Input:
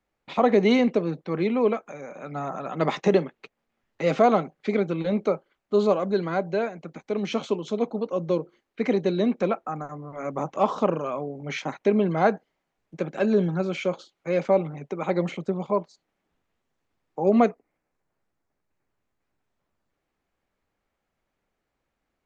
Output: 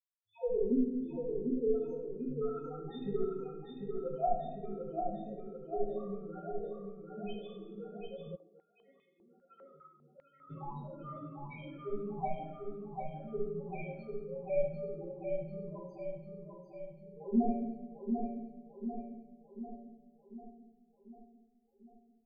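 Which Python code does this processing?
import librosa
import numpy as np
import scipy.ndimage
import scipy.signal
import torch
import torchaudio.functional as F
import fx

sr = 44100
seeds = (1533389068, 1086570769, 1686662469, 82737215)

y = fx.bin_expand(x, sr, power=2.0)
y = fx.recorder_agc(y, sr, target_db=-20.0, rise_db_per_s=17.0, max_gain_db=30)
y = fx.dereverb_blind(y, sr, rt60_s=0.97)
y = fx.level_steps(y, sr, step_db=22)
y = fx.tube_stage(y, sr, drive_db=26.0, bias=0.7)
y = fx.spec_topn(y, sr, count=1)
y = fx.echo_feedback(y, sr, ms=745, feedback_pct=56, wet_db=-5.0)
y = fx.room_shoebox(y, sr, seeds[0], volume_m3=400.0, walls='mixed', distance_m=2.0)
y = fx.filter_held_bandpass(y, sr, hz=5.0, low_hz=580.0, high_hz=2500.0, at=(8.35, 10.49), fade=0.02)
y = y * 10.0 ** (4.0 / 20.0)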